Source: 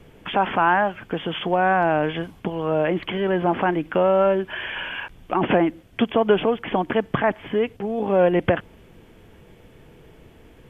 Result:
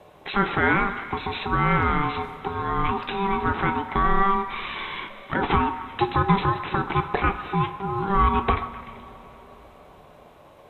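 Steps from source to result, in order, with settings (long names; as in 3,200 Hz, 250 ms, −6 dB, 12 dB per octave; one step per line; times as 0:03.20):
ring modulation 590 Hz
echo through a band-pass that steps 128 ms, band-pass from 970 Hz, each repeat 0.7 octaves, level −11 dB
coupled-rooms reverb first 0.31 s, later 4.7 s, from −20 dB, DRR 7 dB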